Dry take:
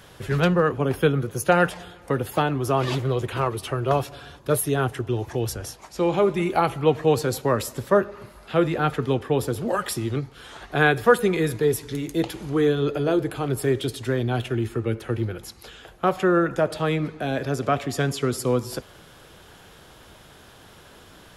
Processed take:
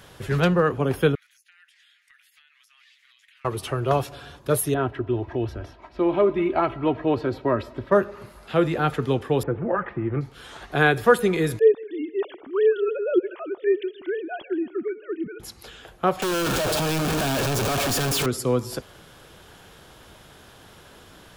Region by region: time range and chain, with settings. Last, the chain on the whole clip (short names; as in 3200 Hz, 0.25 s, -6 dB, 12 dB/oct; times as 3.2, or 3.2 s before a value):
1.15–3.45 elliptic high-pass 1900 Hz, stop band 80 dB + compressor 10:1, threshold -48 dBFS + tilt -3.5 dB/oct
4.74–7.92 comb 3.1 ms, depth 58% + hard clip -10 dBFS + air absorption 370 m
9.43–10.21 steep low-pass 2200 Hz + comb 5.9 ms, depth 32%
11.59–15.4 sine-wave speech + feedback echo 0.156 s, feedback 49%, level -23 dB
16.22–18.26 infinite clipping + notch 2000 Hz, Q 6.7
whole clip: dry